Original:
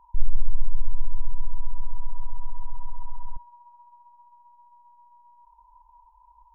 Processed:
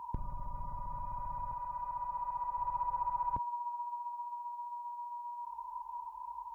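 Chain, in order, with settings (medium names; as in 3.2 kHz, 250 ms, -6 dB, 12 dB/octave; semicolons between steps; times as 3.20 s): high-pass 130 Hz 12 dB/octave; 1.53–2.58 s: bass shelf 390 Hz -7.5 dB; trim +12.5 dB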